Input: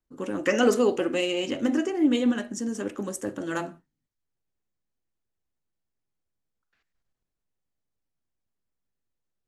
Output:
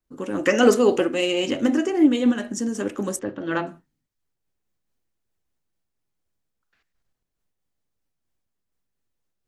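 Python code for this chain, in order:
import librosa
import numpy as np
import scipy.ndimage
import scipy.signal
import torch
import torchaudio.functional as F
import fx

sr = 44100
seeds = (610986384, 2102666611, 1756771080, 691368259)

y = fx.lowpass(x, sr, hz=4000.0, slope=24, at=(3.19, 3.67))
y = fx.am_noise(y, sr, seeds[0], hz=5.7, depth_pct=55)
y = y * librosa.db_to_amplitude(7.5)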